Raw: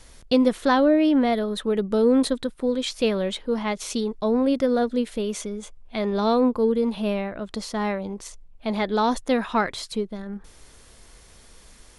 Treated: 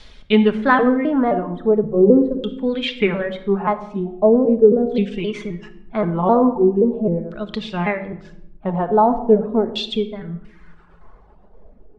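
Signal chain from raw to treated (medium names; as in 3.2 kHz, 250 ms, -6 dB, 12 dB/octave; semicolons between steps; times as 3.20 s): pitch shift switched off and on -3 st, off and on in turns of 262 ms; reverb removal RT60 1.1 s; LFO low-pass saw down 0.41 Hz 360–3900 Hz; simulated room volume 2400 m³, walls furnished, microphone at 1.4 m; trim +3 dB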